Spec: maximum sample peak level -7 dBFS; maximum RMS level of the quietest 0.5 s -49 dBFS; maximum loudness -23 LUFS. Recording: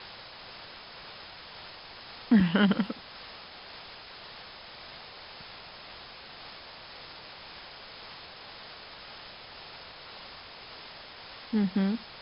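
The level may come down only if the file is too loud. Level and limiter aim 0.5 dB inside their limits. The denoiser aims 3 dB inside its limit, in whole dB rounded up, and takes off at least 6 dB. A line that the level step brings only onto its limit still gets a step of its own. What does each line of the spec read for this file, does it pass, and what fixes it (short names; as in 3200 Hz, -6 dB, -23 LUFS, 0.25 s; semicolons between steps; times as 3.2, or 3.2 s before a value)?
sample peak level -10.5 dBFS: OK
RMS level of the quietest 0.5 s -47 dBFS: fail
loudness -35.0 LUFS: OK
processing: denoiser 6 dB, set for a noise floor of -47 dBFS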